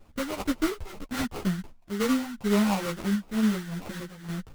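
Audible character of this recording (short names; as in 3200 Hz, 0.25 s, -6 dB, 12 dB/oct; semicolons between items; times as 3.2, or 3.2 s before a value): phasing stages 4, 2.1 Hz, lowest notch 370–1800 Hz; random-step tremolo; aliases and images of a low sample rate 1700 Hz, jitter 20%; a shimmering, thickened sound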